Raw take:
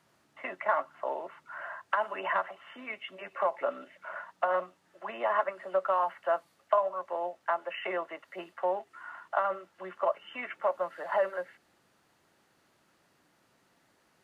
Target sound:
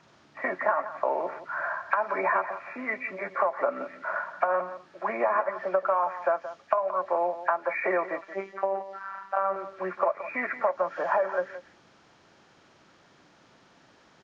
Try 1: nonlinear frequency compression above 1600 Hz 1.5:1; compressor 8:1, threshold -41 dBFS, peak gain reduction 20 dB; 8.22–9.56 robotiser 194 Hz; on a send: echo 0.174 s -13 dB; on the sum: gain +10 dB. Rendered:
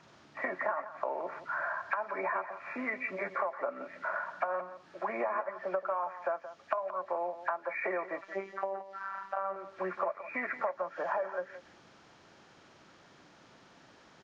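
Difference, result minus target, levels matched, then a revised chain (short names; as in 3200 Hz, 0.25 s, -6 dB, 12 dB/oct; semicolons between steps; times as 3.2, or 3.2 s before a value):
compressor: peak gain reduction +8.5 dB
nonlinear frequency compression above 1600 Hz 1.5:1; compressor 8:1, threshold -31.5 dBFS, peak gain reduction 12 dB; 8.22–9.56 robotiser 194 Hz; on a send: echo 0.174 s -13 dB; on the sum: gain +10 dB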